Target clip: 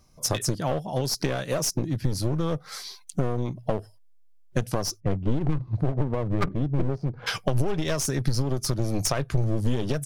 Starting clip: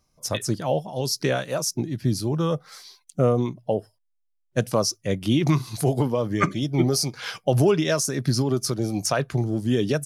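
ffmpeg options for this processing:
ffmpeg -i in.wav -filter_complex "[0:a]lowshelf=frequency=350:gain=4,asplit=3[link_01][link_02][link_03];[link_01]afade=type=out:start_time=4.99:duration=0.02[link_04];[link_02]adynamicsmooth=sensitivity=0.5:basefreq=560,afade=type=in:start_time=4.99:duration=0.02,afade=type=out:start_time=7.26:duration=0.02[link_05];[link_03]afade=type=in:start_time=7.26:duration=0.02[link_06];[link_04][link_05][link_06]amix=inputs=3:normalize=0,aeval=exprs='clip(val(0),-1,0.0596)':channel_layout=same,acompressor=threshold=-29dB:ratio=6,asubboost=boost=2.5:cutoff=110,volume=6.5dB" out.wav

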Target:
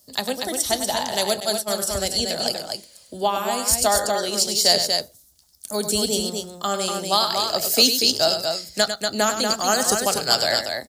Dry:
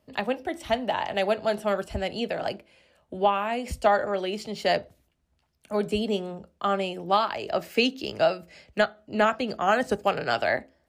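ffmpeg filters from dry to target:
ffmpeg -i in.wav -filter_complex "[0:a]aecho=1:1:99.13|239.1:0.355|0.562,asettb=1/sr,asplit=3[link_01][link_02][link_03];[link_01]atrim=end=1.404[link_04];[link_02]atrim=start=1.4:end=1.82,asetpts=PTS-STARTPTS,afade=type=in:duration=0.004:curve=qsin,afade=type=out:start_time=0.416:duration=0.004:curve=qsin,agate=range=-33dB:threshold=-20dB:ratio=3:detection=peak[link_05];[link_03]atrim=start=1.816[link_06];[link_04][link_05]acrossfade=duration=0.004:curve1=hsin:curve2=qsin[link_07];[link_07][link_06]acrossfade=duration=0.004:curve1=qsin:curve2=hsin,aexciter=amount=8:drive=9.2:freq=4000" out.wav

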